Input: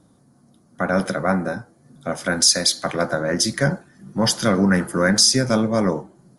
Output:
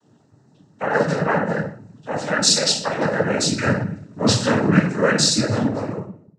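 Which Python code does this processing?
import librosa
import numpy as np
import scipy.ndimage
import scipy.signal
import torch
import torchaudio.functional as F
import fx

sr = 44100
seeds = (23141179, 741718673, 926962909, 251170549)

y = fx.fade_out_tail(x, sr, length_s=1.43)
y = fx.room_shoebox(y, sr, seeds[0], volume_m3=75.0, walls='mixed', distance_m=2.1)
y = fx.noise_vocoder(y, sr, seeds[1], bands=12)
y = y * 10.0 ** (-8.0 / 20.0)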